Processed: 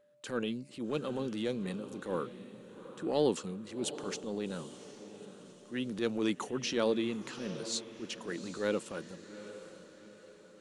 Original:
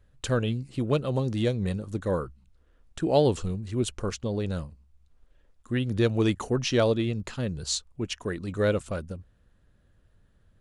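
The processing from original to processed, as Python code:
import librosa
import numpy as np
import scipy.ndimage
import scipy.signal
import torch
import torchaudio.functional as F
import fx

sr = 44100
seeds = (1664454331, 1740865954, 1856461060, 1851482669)

y = scipy.signal.sosfilt(scipy.signal.butter(4, 190.0, 'highpass', fs=sr, output='sos'), x)
y = fx.transient(y, sr, attack_db=-8, sustain_db=3)
y = fx.echo_diffused(y, sr, ms=785, feedback_pct=46, wet_db=-13.0)
y = y + 10.0 ** (-57.0 / 20.0) * np.sin(2.0 * np.pi * 590.0 * np.arange(len(y)) / sr)
y = fx.peak_eq(y, sr, hz=650.0, db=-7.5, octaves=0.23)
y = F.gain(torch.from_numpy(y), -4.5).numpy()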